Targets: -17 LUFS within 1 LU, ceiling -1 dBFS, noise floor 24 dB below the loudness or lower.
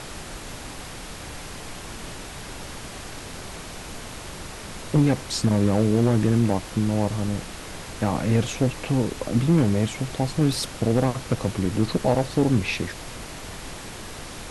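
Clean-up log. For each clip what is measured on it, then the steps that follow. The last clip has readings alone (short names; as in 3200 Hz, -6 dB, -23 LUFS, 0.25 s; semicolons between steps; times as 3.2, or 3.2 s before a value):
clipped 0.5%; flat tops at -11.0 dBFS; noise floor -38 dBFS; noise floor target -48 dBFS; loudness -23.5 LUFS; peak -11.0 dBFS; loudness target -17.0 LUFS
-> clip repair -11 dBFS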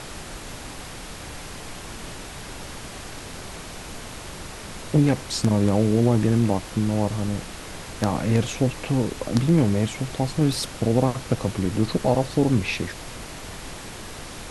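clipped 0.0%; noise floor -38 dBFS; noise floor target -47 dBFS
-> noise print and reduce 9 dB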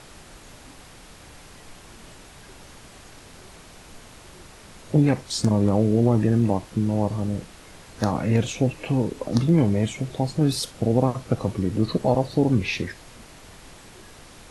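noise floor -47 dBFS; loudness -23.0 LUFS; peak -3.5 dBFS; loudness target -17.0 LUFS
-> gain +6 dB; limiter -1 dBFS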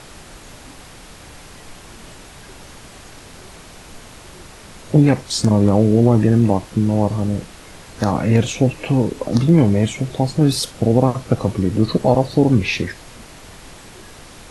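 loudness -17.0 LUFS; peak -1.0 dBFS; noise floor -41 dBFS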